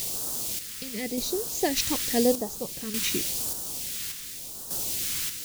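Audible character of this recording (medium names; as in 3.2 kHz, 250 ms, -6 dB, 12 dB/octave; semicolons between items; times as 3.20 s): a quantiser's noise floor 6-bit, dither triangular; random-step tremolo 1.7 Hz, depth 65%; phasing stages 2, 0.91 Hz, lowest notch 670–2100 Hz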